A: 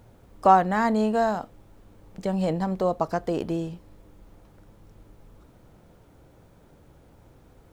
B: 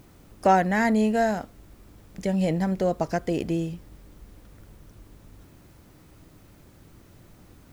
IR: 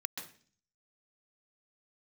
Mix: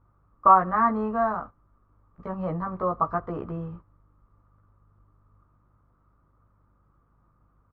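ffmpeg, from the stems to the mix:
-filter_complex "[0:a]bandreject=f=770:w=12,aeval=exprs='val(0)+0.00398*(sin(2*PI*50*n/s)+sin(2*PI*2*50*n/s)/2+sin(2*PI*3*50*n/s)/3+sin(2*PI*4*50*n/s)/4+sin(2*PI*5*50*n/s)/5)':c=same,equalizer=f=390:t=o:w=2.4:g=-5,volume=-6dB,asplit=2[a][b];[b]volume=-24dB[c];[1:a]volume=-1,adelay=15,volume=-10.5dB[d];[2:a]atrim=start_sample=2205[e];[c][e]afir=irnorm=-1:irlink=0[f];[a][d][f]amix=inputs=3:normalize=0,agate=range=-12dB:threshold=-44dB:ratio=16:detection=peak,lowpass=f=1.2k:t=q:w=10,equalizer=f=100:w=1.5:g=4.5"

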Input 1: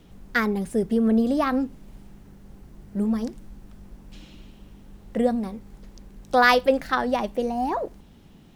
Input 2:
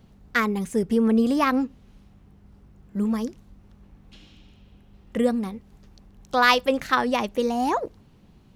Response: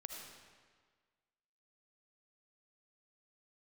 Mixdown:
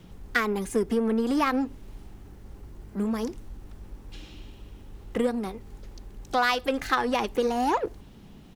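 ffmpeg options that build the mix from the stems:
-filter_complex "[0:a]acompressor=threshold=-22dB:ratio=6,asoftclip=type=tanh:threshold=-32dB,volume=0.5dB[a];[1:a]acompressor=threshold=-21dB:ratio=4,adelay=2.5,volume=0.5dB[b];[a][b]amix=inputs=2:normalize=0"

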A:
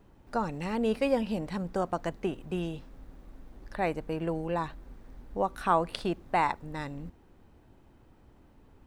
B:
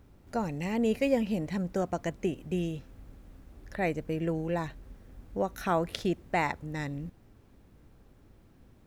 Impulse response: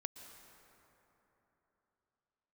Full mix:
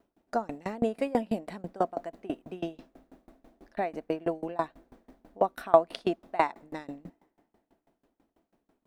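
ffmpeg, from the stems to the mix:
-filter_complex "[0:a]agate=range=-10dB:threshold=-53dB:ratio=16:detection=peak,equalizer=f=670:t=o:w=0.21:g=13,volume=2.5dB[a];[1:a]volume=-9dB,asplit=2[b][c];[c]volume=-8.5dB[d];[2:a]atrim=start_sample=2205[e];[d][e]afir=irnorm=-1:irlink=0[f];[a][b][f]amix=inputs=3:normalize=0,lowshelf=f=170:t=q:w=1.5:g=-12.5,aeval=exprs='val(0)*pow(10,-26*if(lt(mod(6.1*n/s,1),2*abs(6.1)/1000),1-mod(6.1*n/s,1)/(2*abs(6.1)/1000),(mod(6.1*n/s,1)-2*abs(6.1)/1000)/(1-2*abs(6.1)/1000))/20)':c=same"

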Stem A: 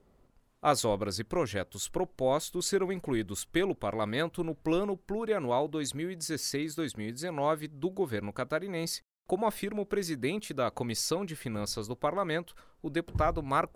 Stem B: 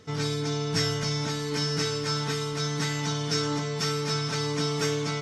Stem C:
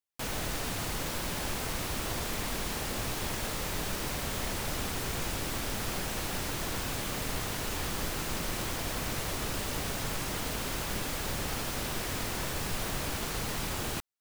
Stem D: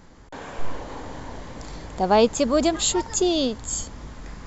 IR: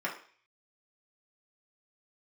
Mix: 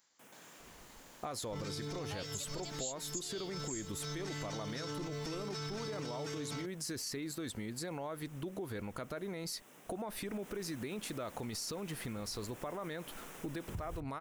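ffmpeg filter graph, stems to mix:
-filter_complex "[0:a]acompressor=threshold=-29dB:ratio=6,adelay=600,volume=3dB[a];[1:a]adelay=1450,volume=-4.5dB[b];[2:a]highpass=f=160:w=0.5412,highpass=f=160:w=1.3066,equalizer=f=4.4k:w=3.1:g=-13.5,volume=-14dB,afade=t=in:st=10.16:d=0.3:silence=0.375837[c];[3:a]aderivative,volume=-7.5dB,asplit=2[d][e];[e]apad=whole_len=293987[f];[b][f]sidechaincompress=threshold=-46dB:ratio=8:attack=7:release=335[g];[a][g][c]amix=inputs=3:normalize=0,alimiter=level_in=3dB:limit=-24dB:level=0:latency=1:release=18,volume=-3dB,volume=0dB[h];[d][h]amix=inputs=2:normalize=0,acompressor=threshold=-38dB:ratio=4"

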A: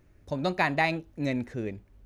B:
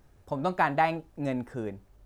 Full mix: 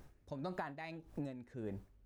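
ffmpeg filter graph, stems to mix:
-filter_complex "[0:a]volume=-12dB[a];[1:a]alimiter=limit=-20.5dB:level=0:latency=1:release=25,aeval=exprs='val(0)*pow(10,-32*(0.5-0.5*cos(2*PI*1.7*n/s))/20)':c=same,volume=2.5dB,asplit=2[b][c];[c]apad=whole_len=90637[d];[a][d]sidechaincompress=threshold=-34dB:ratio=4:attack=36:release=1380[e];[e][b]amix=inputs=2:normalize=0,acompressor=threshold=-40dB:ratio=4"

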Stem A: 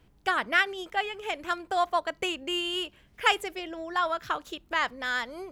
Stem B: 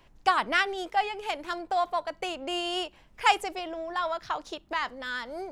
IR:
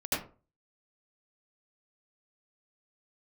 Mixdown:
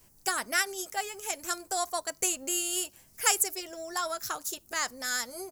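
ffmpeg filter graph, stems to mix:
-filter_complex "[0:a]bandreject=f=1k:w=18,aexciter=amount=13.7:drive=5.8:freq=4.9k,volume=-5.5dB[a];[1:a]acompressor=threshold=-36dB:ratio=6,adelay=8.2,volume=-7.5dB[b];[a][b]amix=inputs=2:normalize=0"

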